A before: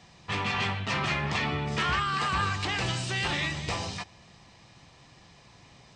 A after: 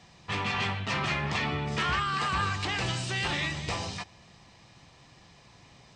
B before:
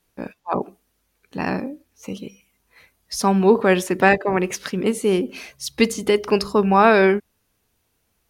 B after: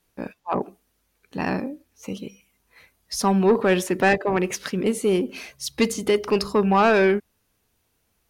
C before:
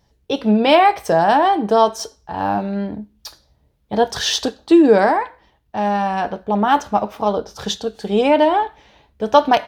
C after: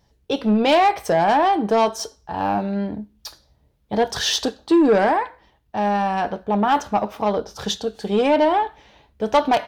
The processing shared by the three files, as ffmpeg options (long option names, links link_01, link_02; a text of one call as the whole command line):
ffmpeg -i in.wav -af "acontrast=87,volume=-8dB" out.wav